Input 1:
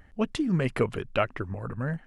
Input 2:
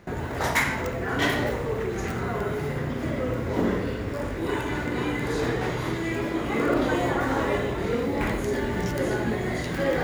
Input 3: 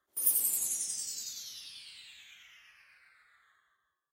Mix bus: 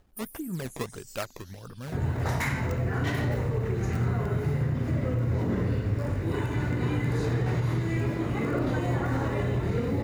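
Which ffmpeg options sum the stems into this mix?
-filter_complex "[0:a]acrusher=samples=17:mix=1:aa=0.000001:lfo=1:lforange=27.2:lforate=1.6,volume=-8.5dB,asplit=2[a][b];[1:a]equalizer=f=110:w=0.99:g=15,bandreject=f=3.3k:w=13,adelay=1850,volume=-5.5dB[c];[2:a]equalizer=f=3.6k:w=0.37:g=-11,acompressor=threshold=-35dB:ratio=12,volume=-1dB[d];[b]apad=whole_len=181835[e];[d][e]sidechaincompress=threshold=-43dB:ratio=5:attack=7.9:release=161[f];[a][c][f]amix=inputs=3:normalize=0,alimiter=limit=-18.5dB:level=0:latency=1:release=70"

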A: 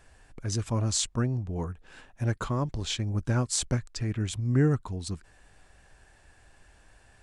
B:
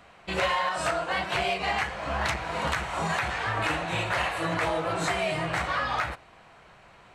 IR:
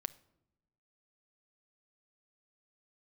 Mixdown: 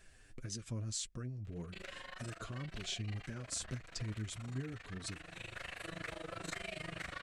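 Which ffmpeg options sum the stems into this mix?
-filter_complex "[0:a]acompressor=threshold=-36dB:ratio=5,flanger=delay=4.4:depth=6.1:regen=31:speed=1.8:shape=triangular,volume=-1dB,asplit=2[a][b];[1:a]acompressor=threshold=-33dB:ratio=6,tremolo=f=25:d=0.947,adelay=1450,volume=-3.5dB[c];[b]apad=whole_len=378975[d];[c][d]sidechaincompress=threshold=-47dB:ratio=6:attack=27:release=1480[e];[a][e]amix=inputs=2:normalize=0,lowpass=f=1.2k:p=1,equalizer=f=880:t=o:w=0.71:g=-12.5,crystalizer=i=8:c=0"

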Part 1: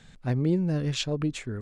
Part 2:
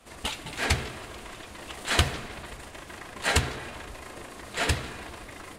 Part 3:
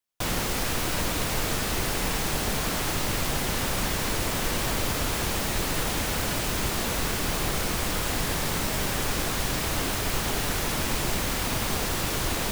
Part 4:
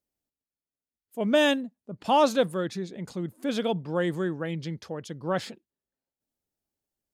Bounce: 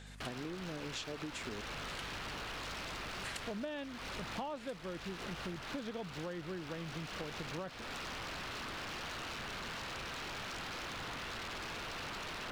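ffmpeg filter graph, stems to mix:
-filter_complex "[0:a]highpass=270,volume=1dB,asplit=2[a][b];[1:a]highpass=1.4k,volume=-14dB[c];[2:a]lowpass=f=1.4k:t=q:w=3.3,equalizer=f=400:t=o:w=1.1:g=-10.5,aeval=exprs='0.0299*(abs(mod(val(0)/0.0299+3,4)-2)-1)':c=same,volume=-7.5dB[d];[3:a]lowpass=3.3k,adelay=2300,volume=-5dB[e];[b]apad=whole_len=246410[f];[c][f]sidechaincompress=threshold=-45dB:ratio=8:attack=16:release=1090[g];[a][g]amix=inputs=2:normalize=0,aeval=exprs='val(0)+0.00251*(sin(2*PI*50*n/s)+sin(2*PI*2*50*n/s)/2+sin(2*PI*3*50*n/s)/3+sin(2*PI*4*50*n/s)/4+sin(2*PI*5*50*n/s)/5)':c=same,acompressor=threshold=-37dB:ratio=2.5,volume=0dB[h];[d][e][h]amix=inputs=3:normalize=0,acompressor=threshold=-38dB:ratio=20"

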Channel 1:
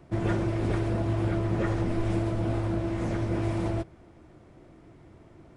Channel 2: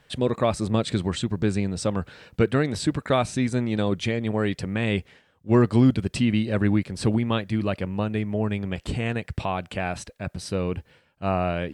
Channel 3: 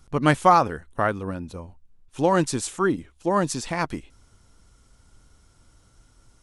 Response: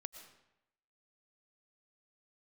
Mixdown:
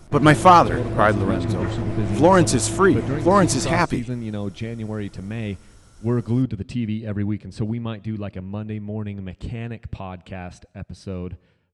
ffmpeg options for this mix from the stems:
-filter_complex "[0:a]volume=-2dB,asplit=2[a][b];[b]volume=-3.5dB[c];[1:a]lowpass=8k,lowshelf=f=310:g=8.5,adelay=550,volume=-10dB,asplit=2[d][e];[e]volume=-12.5dB[f];[2:a]acontrast=75,volume=0dB[g];[3:a]atrim=start_sample=2205[h];[c][f]amix=inputs=2:normalize=0[i];[i][h]afir=irnorm=-1:irlink=0[j];[a][d][g][j]amix=inputs=4:normalize=0"

